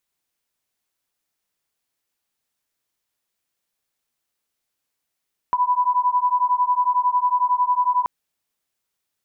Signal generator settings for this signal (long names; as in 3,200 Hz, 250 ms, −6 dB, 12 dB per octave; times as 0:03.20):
two tones that beat 986 Hz, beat 11 Hz, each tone −19.5 dBFS 2.53 s